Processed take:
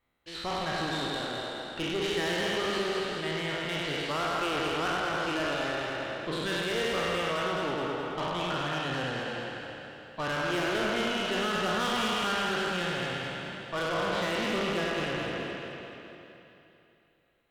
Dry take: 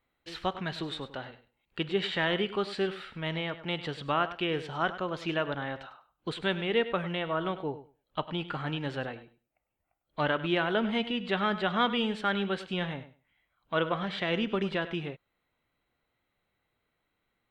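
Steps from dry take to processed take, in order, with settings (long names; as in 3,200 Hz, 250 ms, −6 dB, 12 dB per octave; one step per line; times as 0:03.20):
peak hold with a decay on every bin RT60 2.88 s
tube saturation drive 28 dB, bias 0.5
echo with a time of its own for lows and highs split 360 Hz, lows 138 ms, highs 213 ms, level −4.5 dB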